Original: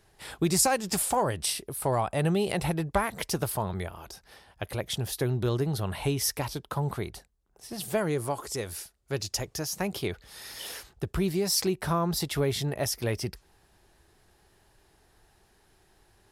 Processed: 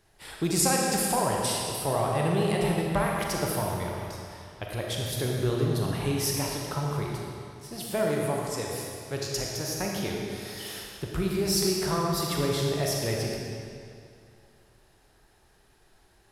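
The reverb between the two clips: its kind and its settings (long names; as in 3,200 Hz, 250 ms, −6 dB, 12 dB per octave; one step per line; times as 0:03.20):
comb and all-pass reverb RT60 2.4 s, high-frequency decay 0.9×, pre-delay 0 ms, DRR −2 dB
level −2.5 dB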